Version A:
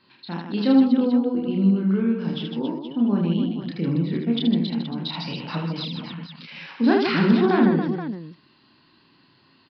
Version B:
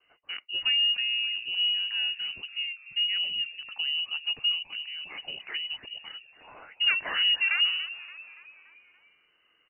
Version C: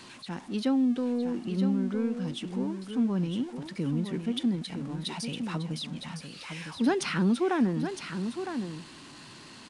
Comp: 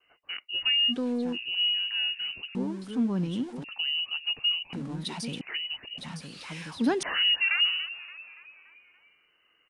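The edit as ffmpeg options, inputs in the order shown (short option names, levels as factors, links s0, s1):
-filter_complex "[2:a]asplit=4[s0][s1][s2][s3];[1:a]asplit=5[s4][s5][s6][s7][s8];[s4]atrim=end=0.94[s9];[s0]atrim=start=0.88:end=1.38[s10];[s5]atrim=start=1.32:end=2.552[s11];[s1]atrim=start=2.548:end=3.642[s12];[s6]atrim=start=3.638:end=4.732[s13];[s2]atrim=start=4.728:end=5.412[s14];[s7]atrim=start=5.408:end=5.982[s15];[s3]atrim=start=5.978:end=7.032[s16];[s8]atrim=start=7.028[s17];[s9][s10]acrossfade=d=0.06:c1=tri:c2=tri[s18];[s18][s11]acrossfade=d=0.06:c1=tri:c2=tri[s19];[s19][s12]acrossfade=d=0.004:c1=hsin:c2=hsin[s20];[s20][s13]acrossfade=d=0.004:c1=hsin:c2=hsin[s21];[s21][s14]acrossfade=d=0.004:c1=hsin:c2=hsin[s22];[s22][s15]acrossfade=d=0.004:c1=hsin:c2=hsin[s23];[s23][s16]acrossfade=d=0.004:c1=hsin:c2=hsin[s24];[s24][s17]acrossfade=d=0.004:c1=hsin:c2=hsin"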